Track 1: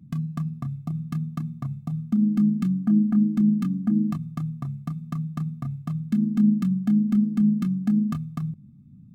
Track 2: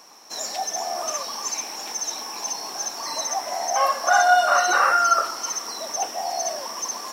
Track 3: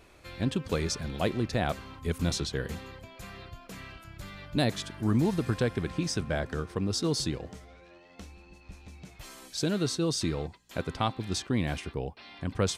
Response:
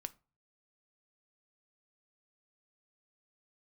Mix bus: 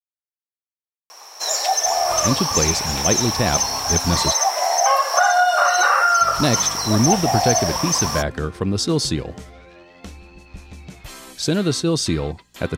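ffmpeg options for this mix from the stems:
-filter_complex "[1:a]highpass=frequency=450:width=0.5412,highpass=frequency=450:width=1.3066,acompressor=threshold=-21dB:ratio=6,adelay=1100,volume=-2dB[link_01];[2:a]adelay=1850,volume=-2.5dB,asplit=3[link_02][link_03][link_04];[link_02]atrim=end=4.33,asetpts=PTS-STARTPTS,afade=type=out:start_time=4.326:duration=0.004:curve=hsin[link_05];[link_03]atrim=start=4.33:end=6.21,asetpts=PTS-STARTPTS,volume=0[link_06];[link_04]atrim=start=6.21,asetpts=PTS-STARTPTS,afade=type=in:duration=0.004:curve=hsin[link_07];[link_05][link_06][link_07]concat=n=3:v=0:a=1[link_08];[link_01][link_08]amix=inputs=2:normalize=0,dynaudnorm=framelen=120:gausssize=17:maxgain=11.5dB"

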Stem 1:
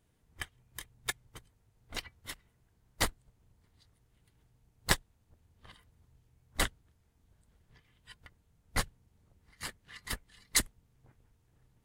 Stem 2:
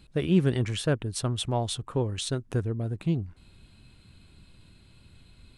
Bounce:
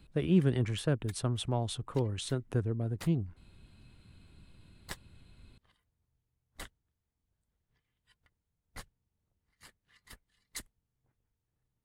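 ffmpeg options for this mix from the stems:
ffmpeg -i stem1.wav -i stem2.wav -filter_complex "[0:a]volume=-15.5dB[link_01];[1:a]acrossover=split=300|3000[link_02][link_03][link_04];[link_03]acompressor=threshold=-27dB:ratio=6[link_05];[link_02][link_05][link_04]amix=inputs=3:normalize=0,equalizer=frequency=5800:width_type=o:width=2.1:gain=-5,volume=-3dB[link_06];[link_01][link_06]amix=inputs=2:normalize=0" out.wav

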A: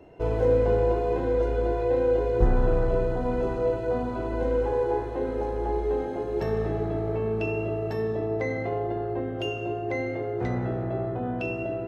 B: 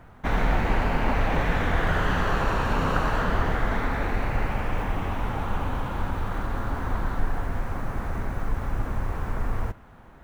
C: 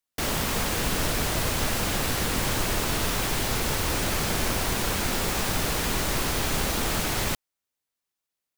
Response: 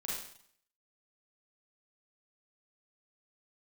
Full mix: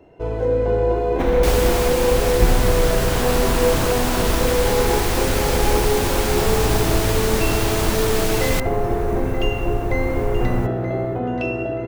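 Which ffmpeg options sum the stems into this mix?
-filter_complex "[0:a]volume=1dB,asplit=2[link_01][link_02];[link_02]volume=-11.5dB[link_03];[1:a]equalizer=frequency=1500:width=1.5:gain=-5.5,alimiter=limit=-17.5dB:level=0:latency=1:release=471,crystalizer=i=0.5:c=0,adelay=950,volume=0.5dB[link_04];[2:a]adelay=1250,volume=-2dB[link_05];[link_03]aecho=0:1:928|1856|2784|3712|4640:1|0.34|0.116|0.0393|0.0134[link_06];[link_01][link_04][link_05][link_06]amix=inputs=4:normalize=0,dynaudnorm=framelen=510:gausssize=3:maxgain=5dB"

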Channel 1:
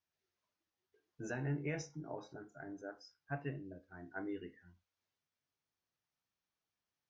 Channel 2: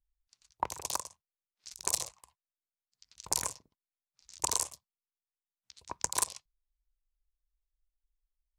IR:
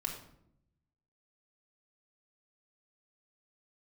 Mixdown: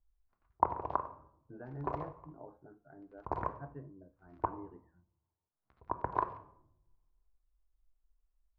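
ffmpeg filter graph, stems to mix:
-filter_complex "[0:a]adelay=300,volume=-5.5dB[link_01];[1:a]volume=2dB,asplit=3[link_02][link_03][link_04];[link_02]atrim=end=4.47,asetpts=PTS-STARTPTS,afade=type=out:start_time=4.466:duration=0.004:curve=hsin[link_05];[link_03]atrim=start=4.47:end=5.52,asetpts=PTS-STARTPTS,volume=0[link_06];[link_04]atrim=start=5.52,asetpts=PTS-STARTPTS,afade=type=in:duration=0.004:curve=hsin[link_07];[link_05][link_06][link_07]concat=n=3:v=0:a=1,asplit=2[link_08][link_09];[link_09]volume=-4.5dB[link_10];[2:a]atrim=start_sample=2205[link_11];[link_10][link_11]afir=irnorm=-1:irlink=0[link_12];[link_01][link_08][link_12]amix=inputs=3:normalize=0,lowpass=frequency=1300:width=0.5412,lowpass=frequency=1300:width=1.3066"

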